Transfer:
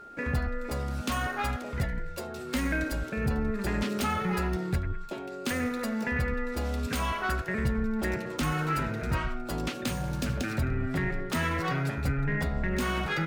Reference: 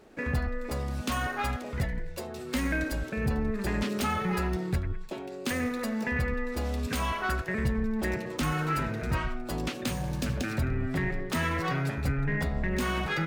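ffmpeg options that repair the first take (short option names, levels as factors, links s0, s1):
-af "bandreject=f=1400:w=30"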